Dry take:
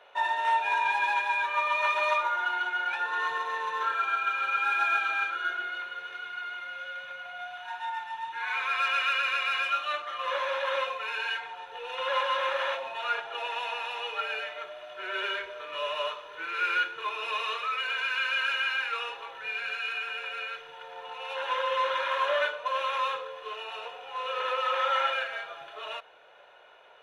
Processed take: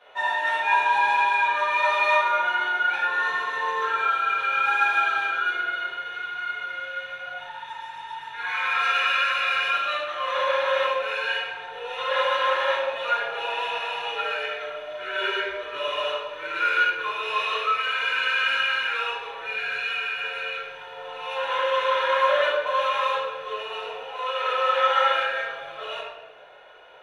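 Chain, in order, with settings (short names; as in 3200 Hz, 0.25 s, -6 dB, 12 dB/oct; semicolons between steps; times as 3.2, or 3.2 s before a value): 7.41–8.26 spectral repair 500–4500 Hz after; 24.02–24.5 HPF 290 Hz 24 dB/oct; reverb RT60 1.3 s, pre-delay 4 ms, DRR -9 dB; gain -4 dB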